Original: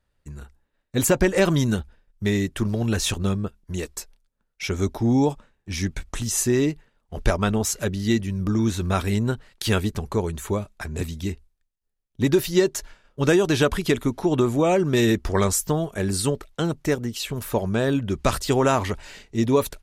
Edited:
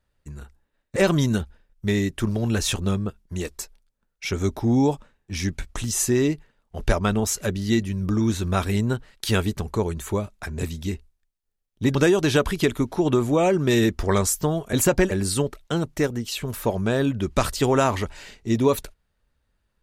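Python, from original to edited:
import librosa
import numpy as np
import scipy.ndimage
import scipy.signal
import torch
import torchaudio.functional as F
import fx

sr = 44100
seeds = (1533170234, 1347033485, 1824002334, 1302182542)

y = fx.edit(x, sr, fx.move(start_s=0.96, length_s=0.38, to_s=15.99),
    fx.cut(start_s=12.33, length_s=0.88), tone=tone)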